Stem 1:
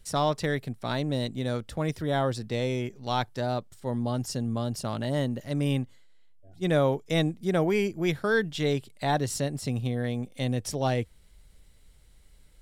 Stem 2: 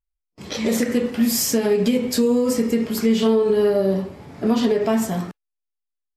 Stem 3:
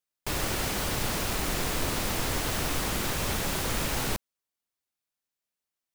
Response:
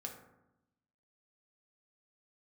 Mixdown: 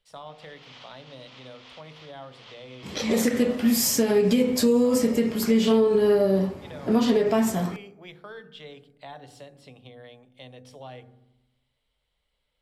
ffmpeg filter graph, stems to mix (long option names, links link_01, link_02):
-filter_complex "[0:a]volume=-12dB,asplit=3[link_01][link_02][link_03];[link_02]volume=-7.5dB[link_04];[1:a]adelay=2450,volume=-3dB,asplit=2[link_05][link_06];[link_06]volume=-11.5dB[link_07];[2:a]alimiter=level_in=3.5dB:limit=-24dB:level=0:latency=1:release=166,volume=-3.5dB,bandpass=frequency=2500:width_type=q:width=0.67:csg=0,volume=-5dB[link_08];[link_03]apad=whole_len=262182[link_09];[link_08][link_09]sidechaincompress=threshold=-41dB:ratio=8:attack=46:release=303[link_10];[link_01][link_10]amix=inputs=2:normalize=0,highpass=frequency=390:width=0.5412,highpass=frequency=390:width=1.3066,equalizer=frequency=540:width_type=q:width=4:gain=4,equalizer=frequency=990:width_type=q:width=4:gain=3,equalizer=frequency=1600:width_type=q:width=4:gain=-6,equalizer=frequency=3200:width_type=q:width=4:gain=7,lowpass=frequency=5300:width=0.5412,lowpass=frequency=5300:width=1.3066,acompressor=threshold=-40dB:ratio=6,volume=0dB[link_11];[3:a]atrim=start_sample=2205[link_12];[link_04][link_07]amix=inputs=2:normalize=0[link_13];[link_13][link_12]afir=irnorm=-1:irlink=0[link_14];[link_05][link_11][link_14]amix=inputs=3:normalize=0"